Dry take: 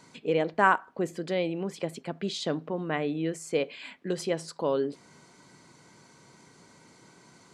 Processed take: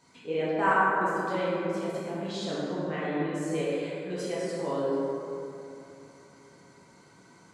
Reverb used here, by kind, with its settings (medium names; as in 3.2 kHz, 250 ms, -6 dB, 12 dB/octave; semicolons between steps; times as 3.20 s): plate-style reverb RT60 3 s, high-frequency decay 0.4×, DRR -9.5 dB; trim -10 dB